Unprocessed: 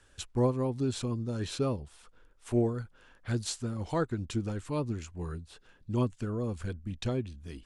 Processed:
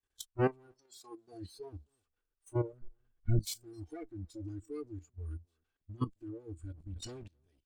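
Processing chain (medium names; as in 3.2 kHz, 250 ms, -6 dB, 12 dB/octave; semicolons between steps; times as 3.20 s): comb filter that takes the minimum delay 2.6 ms; 0.71–1.32 s: high-pass 860 Hz -> 220 Hz 12 dB/octave; 2.73–3.39 s: tilt EQ -3.5 dB/octave; level held to a coarse grid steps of 13 dB; vibrato 0.84 Hz 28 cents; delay 265 ms -21.5 dB; spectral noise reduction 22 dB; 6.72–7.28 s: decay stretcher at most 24 dB/s; trim +1.5 dB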